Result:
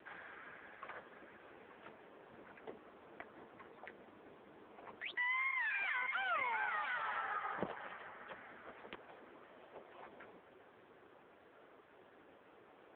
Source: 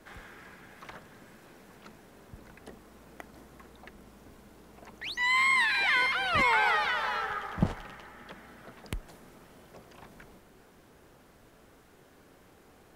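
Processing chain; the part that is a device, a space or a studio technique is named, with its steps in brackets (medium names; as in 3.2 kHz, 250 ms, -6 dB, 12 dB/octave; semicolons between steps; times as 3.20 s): 8.77–10.00 s: high-pass 210 Hz 24 dB/octave; voicemail (band-pass 330–3100 Hz; compression 8:1, threshold -35 dBFS, peak gain reduction 13.5 dB; trim +1.5 dB; AMR-NB 5.9 kbps 8 kHz)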